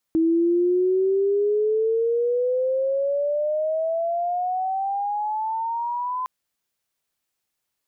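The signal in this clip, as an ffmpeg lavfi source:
ffmpeg -f lavfi -i "aevalsrc='pow(10,(-16-8*t/6.11)/20)*sin(2*PI*322*6.11/(20*log(2)/12)*(exp(20*log(2)/12*t/6.11)-1))':duration=6.11:sample_rate=44100" out.wav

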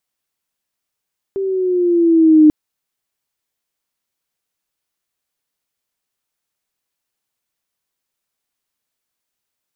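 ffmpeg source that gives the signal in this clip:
ffmpeg -f lavfi -i "aevalsrc='pow(10,(-4+13.5*(t/1.14-1))/20)*sin(2*PI*393*1.14/(-4.5*log(2)/12)*(exp(-4.5*log(2)/12*t/1.14)-1))':duration=1.14:sample_rate=44100" out.wav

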